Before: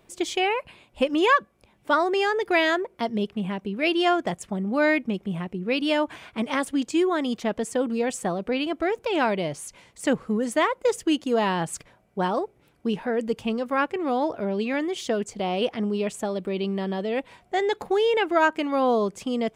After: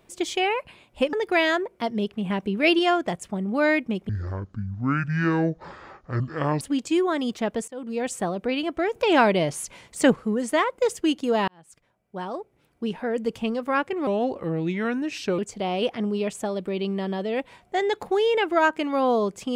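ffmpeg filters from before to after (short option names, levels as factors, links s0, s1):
-filter_complex "[0:a]asplit=12[s0][s1][s2][s3][s4][s5][s6][s7][s8][s9][s10][s11];[s0]atrim=end=1.132[s12];[s1]atrim=start=2.318:end=3.492[s13];[s2]atrim=start=3.488:end=3.982,asetpts=PTS-STARTPTS,volume=1.58[s14];[s3]atrim=start=3.978:end=5.284[s15];[s4]atrim=start=5.28:end=6.64,asetpts=PTS-STARTPTS,asetrate=23814,aresample=44100[s16];[s5]atrim=start=6.636:end=7.71,asetpts=PTS-STARTPTS,afade=t=out:st=1.07:d=0.004:c=hsin:silence=0.0707946[s17];[s6]atrim=start=7.71:end=8.992,asetpts=PTS-STARTPTS,afade=t=in:d=0.42:silence=0.0707946[s18];[s7]atrim=start=8.988:end=10.192,asetpts=PTS-STARTPTS,volume=1.78[s19];[s8]atrim=start=10.188:end=11.51,asetpts=PTS-STARTPTS,afade=t=out:st=1.318:d=0.004:c=hsin[s20];[s9]atrim=start=11.51:end=14.104,asetpts=PTS-STARTPTS,afade=t=in:d=1.83[s21];[s10]atrim=start=14.1:end=15.18,asetpts=PTS-STARTPTS,asetrate=36162,aresample=44100[s22];[s11]atrim=start=15.176[s23];[s12][s13]acrossfade=d=0.004:c1=hsin:c2=hsin[s24];[s24][s14]acrossfade=d=0.004:c1=hsin:c2=hsin[s25];[s25][s15]acrossfade=d=0.004:c1=hsin:c2=hsin[s26];[s26][s16]acrossfade=d=0.004:c1=hsin:c2=hsin[s27];[s17][s18]concat=n=2:v=0:a=1[s28];[s27][s28]acrossfade=d=0.004:c1=hsin:c2=hsin[s29];[s29][s19]acrossfade=d=0.004:c1=hsin:c2=hsin[s30];[s20][s21]concat=n=2:v=0:a=1[s31];[s30][s31]acrossfade=d=0.004:c1=hsin:c2=hsin[s32];[s32][s22]acrossfade=d=0.004:c1=hsin:c2=hsin[s33];[s33][s23]acrossfade=d=0.004:c1=hsin:c2=hsin"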